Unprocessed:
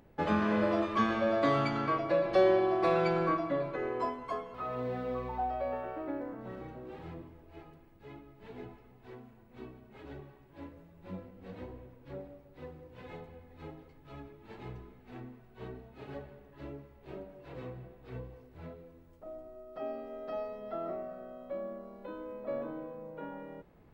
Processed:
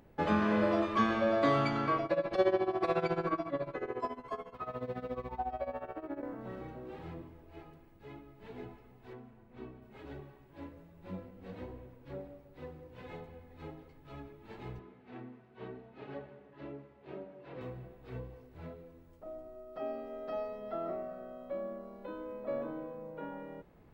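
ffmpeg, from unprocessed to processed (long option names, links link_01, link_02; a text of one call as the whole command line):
ffmpeg -i in.wav -filter_complex "[0:a]asettb=1/sr,asplit=3[link_01][link_02][link_03];[link_01]atrim=end=2.054[link_04];[link_02]atrim=start=2.05:end=6.23,asetpts=PTS-STARTPTS,afade=type=in:duration=0.004:curve=qsin,afade=type=out:start_time=4.176:duration=0.004:curve=qsin,tremolo=f=14:d=0.84[link_05];[link_03]atrim=start=6.226[link_06];[link_04][link_05]acrossfade=duration=0.004:curve1=hsin:curve2=qsin[link_07];[link_07][link_06]acrossfade=duration=0.004:curve1=qsin:curve2=hsin,asettb=1/sr,asplit=3[link_08][link_09][link_10];[link_08]atrim=end=9.134[link_11];[link_09]atrim=start=9.13:end=9.82,asetpts=PTS-STARTPTS,afade=type=in:duration=0.004:curve=qsin,afade=type=out:start_time=0.686:duration=0.004:curve=qsin,highshelf=frequency=4700:gain=-10[link_12];[link_10]atrim=start=9.816[link_13];[link_11][link_12]acrossfade=duration=0.004:curve1=hsin:curve2=qsin[link_14];[link_14][link_13]acrossfade=duration=0.004:curve1=qsin:curve2=hsin,asettb=1/sr,asplit=3[link_15][link_16][link_17];[link_15]atrim=end=14.794[link_18];[link_16]atrim=start=14.79:end=17.61,asetpts=PTS-STARTPTS,afade=type=in:duration=0.004:curve=qsin,afade=type=out:start_time=2.816:duration=0.004:curve=qsin,highpass=140,lowpass=3800[link_19];[link_17]atrim=start=17.606[link_20];[link_18][link_19]acrossfade=duration=0.004:curve1=hsin:curve2=qsin[link_21];[link_21][link_20]acrossfade=duration=0.004:curve1=qsin:curve2=hsin" out.wav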